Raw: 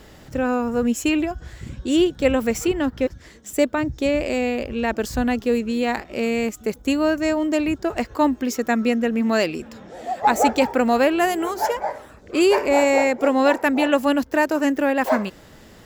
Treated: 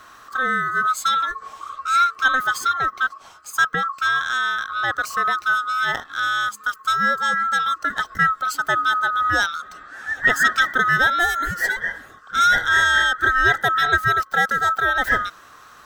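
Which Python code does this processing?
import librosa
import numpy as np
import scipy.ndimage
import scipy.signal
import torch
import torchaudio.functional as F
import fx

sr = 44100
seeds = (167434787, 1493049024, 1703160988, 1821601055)

y = fx.band_swap(x, sr, width_hz=1000)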